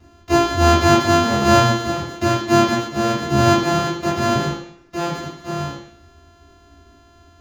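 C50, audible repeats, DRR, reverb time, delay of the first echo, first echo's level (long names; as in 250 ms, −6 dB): 2.0 dB, no echo audible, −10.0 dB, 0.65 s, no echo audible, no echo audible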